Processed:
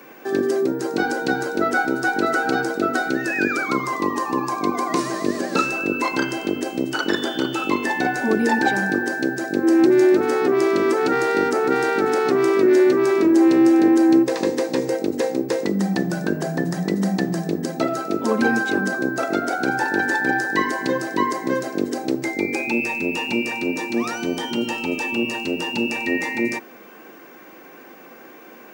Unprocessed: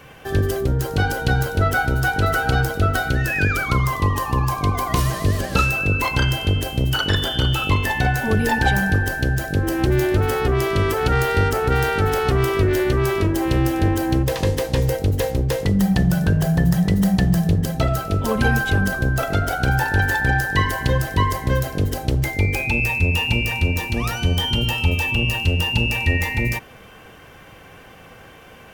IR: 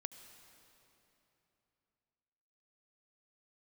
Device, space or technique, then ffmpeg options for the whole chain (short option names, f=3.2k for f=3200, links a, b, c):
old television with a line whistle: -af "highpass=f=220:w=0.5412,highpass=f=220:w=1.3066,equalizer=f=240:t=q:w=4:g=5,equalizer=f=340:t=q:w=4:g=9,equalizer=f=3.1k:t=q:w=4:g=-10,lowpass=f=8.6k:w=0.5412,lowpass=f=8.6k:w=1.3066,aeval=exprs='val(0)+0.00355*sin(2*PI*15625*n/s)':c=same"